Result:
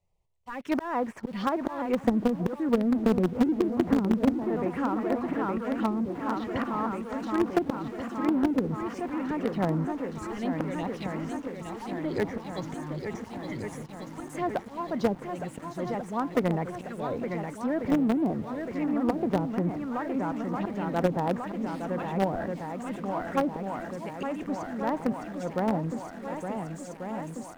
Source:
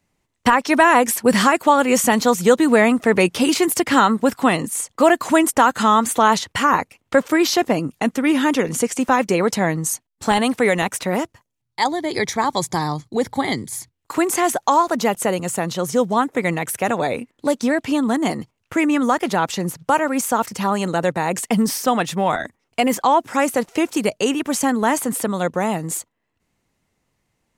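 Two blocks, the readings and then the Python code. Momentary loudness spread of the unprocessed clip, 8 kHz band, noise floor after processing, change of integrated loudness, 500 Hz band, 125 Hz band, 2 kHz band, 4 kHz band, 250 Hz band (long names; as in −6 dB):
8 LU, −27.0 dB, −43 dBFS, −11.0 dB, −11.0 dB, −5.0 dB, −17.5 dB, −20.5 dB, −7.5 dB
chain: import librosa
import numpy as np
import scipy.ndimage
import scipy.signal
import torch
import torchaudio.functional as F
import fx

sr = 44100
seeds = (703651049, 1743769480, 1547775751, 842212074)

p1 = fx.auto_swell(x, sr, attack_ms=428.0)
p2 = fx.low_shelf(p1, sr, hz=63.0, db=11.0)
p3 = fx.env_phaser(p2, sr, low_hz=260.0, high_hz=4000.0, full_db=-20.0)
p4 = fx.echo_swing(p3, sr, ms=1441, ratio=1.5, feedback_pct=55, wet_db=-8)
p5 = fx.env_lowpass_down(p4, sr, base_hz=300.0, full_db=-13.0)
p6 = fx.quant_companded(p5, sr, bits=2)
p7 = p5 + (p6 * librosa.db_to_amplitude(-12.0))
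p8 = fx.high_shelf(p7, sr, hz=3400.0, db=-11.0)
y = p8 * librosa.db_to_amplitude(-6.5)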